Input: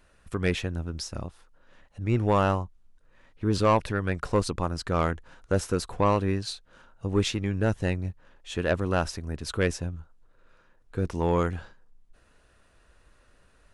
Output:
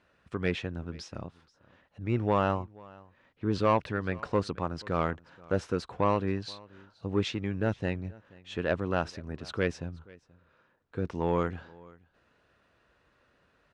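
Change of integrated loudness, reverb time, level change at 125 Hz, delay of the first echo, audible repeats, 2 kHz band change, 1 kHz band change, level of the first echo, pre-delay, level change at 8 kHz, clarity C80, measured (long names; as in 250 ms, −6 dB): −3.5 dB, no reverb audible, −5.5 dB, 480 ms, 1, −3.0 dB, −3.0 dB, −23.5 dB, no reverb audible, −13.0 dB, no reverb audible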